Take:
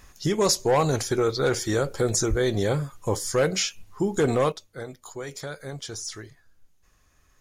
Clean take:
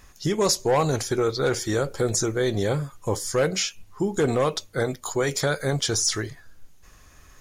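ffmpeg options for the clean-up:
-filter_complex "[0:a]asplit=3[s0][s1][s2];[s0]afade=t=out:st=2.29:d=0.02[s3];[s1]highpass=f=140:w=0.5412,highpass=f=140:w=1.3066,afade=t=in:st=2.29:d=0.02,afade=t=out:st=2.41:d=0.02[s4];[s2]afade=t=in:st=2.41:d=0.02[s5];[s3][s4][s5]amix=inputs=3:normalize=0,asetnsamples=n=441:p=0,asendcmd='4.52 volume volume 11.5dB',volume=1"

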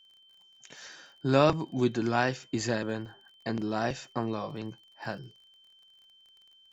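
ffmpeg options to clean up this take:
-af "adeclick=t=4,bandreject=f=3100:w=30"

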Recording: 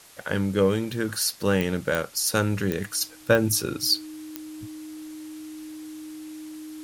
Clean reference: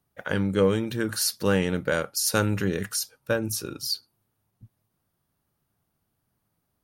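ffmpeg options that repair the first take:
-af "adeclick=t=4,bandreject=f=310:w=30,afwtdn=0.0035,asetnsamples=n=441:p=0,asendcmd='3.01 volume volume -6dB',volume=1"

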